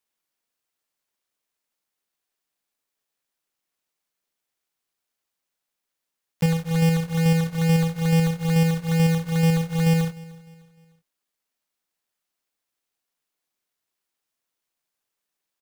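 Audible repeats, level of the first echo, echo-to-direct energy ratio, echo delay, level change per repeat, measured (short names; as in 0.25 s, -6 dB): 2, -21.5 dB, -20.5 dB, 0.303 s, -7.5 dB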